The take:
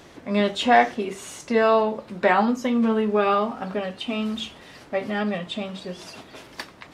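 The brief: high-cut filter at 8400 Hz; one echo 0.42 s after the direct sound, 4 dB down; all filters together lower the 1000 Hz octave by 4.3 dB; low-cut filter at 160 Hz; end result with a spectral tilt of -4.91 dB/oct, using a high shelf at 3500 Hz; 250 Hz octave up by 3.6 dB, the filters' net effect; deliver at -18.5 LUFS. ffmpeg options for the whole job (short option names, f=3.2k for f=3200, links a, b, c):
-af "highpass=160,lowpass=8.4k,equalizer=f=250:t=o:g=5.5,equalizer=f=1k:t=o:g=-6.5,highshelf=f=3.5k:g=-8,aecho=1:1:420:0.631,volume=3.5dB"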